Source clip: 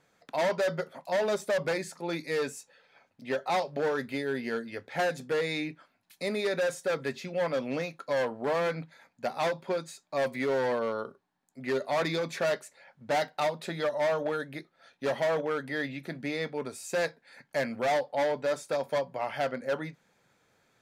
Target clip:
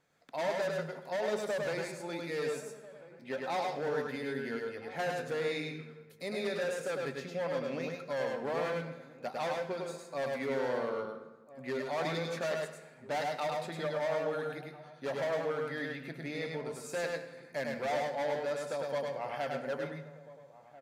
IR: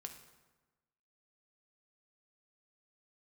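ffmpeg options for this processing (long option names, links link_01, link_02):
-filter_complex "[0:a]asplit=2[link_01][link_02];[link_02]adelay=1341,volume=-17dB,highshelf=frequency=4000:gain=-30.2[link_03];[link_01][link_03]amix=inputs=2:normalize=0,asplit=2[link_04][link_05];[1:a]atrim=start_sample=2205,adelay=103[link_06];[link_05][link_06]afir=irnorm=-1:irlink=0,volume=3dB[link_07];[link_04][link_07]amix=inputs=2:normalize=0,volume=-7dB"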